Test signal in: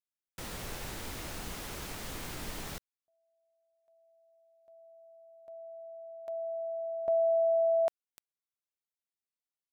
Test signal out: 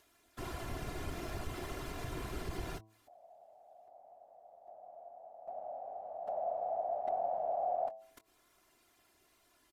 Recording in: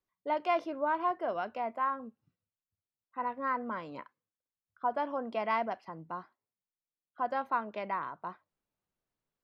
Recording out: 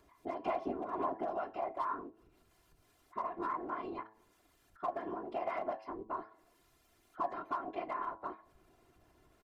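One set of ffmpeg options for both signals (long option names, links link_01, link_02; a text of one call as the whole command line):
ffmpeg -i in.wav -filter_complex "[0:a]highshelf=frequency=2200:gain=-12,acompressor=threshold=-38dB:ratio=6:attack=7.7:release=164:knee=6:detection=peak,asplit=2[link_01][link_02];[link_02]adelay=22,volume=-12.5dB[link_03];[link_01][link_03]amix=inputs=2:normalize=0,aeval=exprs='clip(val(0),-1,0.0178)':channel_layout=same,aresample=32000,aresample=44100,afftfilt=real='hypot(re,im)*cos(PI*b)':imag='0':win_size=512:overlap=0.75,acompressor=mode=upward:threshold=-59dB:ratio=4:attack=2.8:release=81:knee=2.83:detection=peak,afftfilt=real='hypot(re,im)*cos(2*PI*random(0))':imag='hypot(re,im)*sin(2*PI*random(1))':win_size=512:overlap=0.75,bandreject=frequency=109.3:width_type=h:width=4,bandreject=frequency=218.6:width_type=h:width=4,bandreject=frequency=327.9:width_type=h:width=4,bandreject=frequency=437.2:width_type=h:width=4,bandreject=frequency=546.5:width_type=h:width=4,bandreject=frequency=655.8:width_type=h:width=4,bandreject=frequency=765.1:width_type=h:width=4,bandreject=frequency=874.4:width_type=h:width=4,bandreject=frequency=983.7:width_type=h:width=4,bandreject=frequency=1093:width_type=h:width=4,volume=13dB" out.wav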